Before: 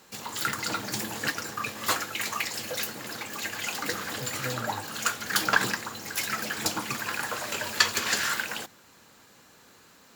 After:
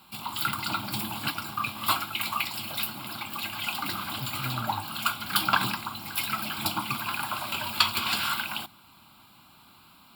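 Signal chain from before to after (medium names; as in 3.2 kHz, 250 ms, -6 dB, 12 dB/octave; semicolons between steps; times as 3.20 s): static phaser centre 1.8 kHz, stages 6; trim +4 dB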